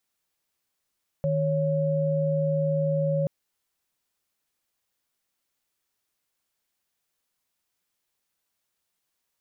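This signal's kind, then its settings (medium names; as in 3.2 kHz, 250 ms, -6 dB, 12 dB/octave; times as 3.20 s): chord D#3/C#5 sine, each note -24.5 dBFS 2.03 s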